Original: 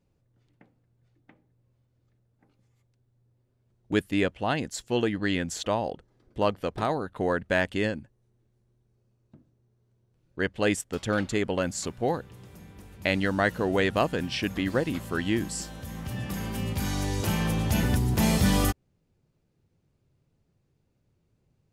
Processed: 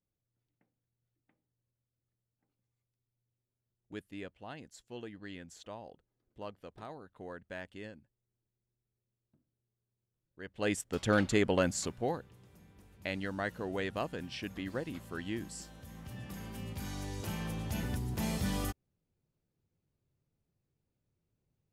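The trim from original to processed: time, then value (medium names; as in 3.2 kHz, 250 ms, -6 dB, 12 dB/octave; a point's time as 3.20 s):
10.43 s -19 dB
10.64 s -8 dB
11.11 s -1 dB
11.65 s -1 dB
12.40 s -11.5 dB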